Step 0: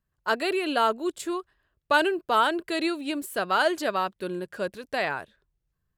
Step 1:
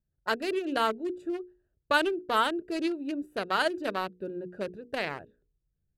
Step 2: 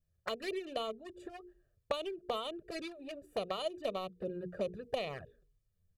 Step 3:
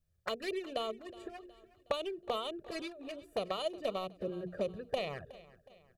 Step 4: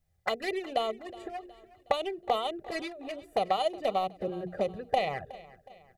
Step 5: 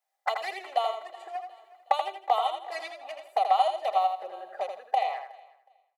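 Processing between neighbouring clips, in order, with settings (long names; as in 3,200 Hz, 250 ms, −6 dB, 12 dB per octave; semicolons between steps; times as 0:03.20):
adaptive Wiener filter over 41 samples; mains-hum notches 60/120/180/240/300/360/420/480 Hz; dynamic equaliser 770 Hz, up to −5 dB, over −34 dBFS, Q 1.1
downward compressor 10 to 1, threshold −35 dBFS, peak gain reduction 16.5 dB; comb filter 1.7 ms, depth 63%; flanger swept by the level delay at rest 11.7 ms, full sweep at −35 dBFS; level +3.5 dB
repeating echo 367 ms, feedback 47%, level −19 dB; level +1 dB
hollow resonant body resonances 780/2,000 Hz, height 16 dB, ringing for 45 ms; level +3.5 dB
fade-out on the ending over 1.35 s; four-pole ladder high-pass 710 Hz, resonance 55%; on a send: repeating echo 82 ms, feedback 28%, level −6.5 dB; on the sum: level +8.5 dB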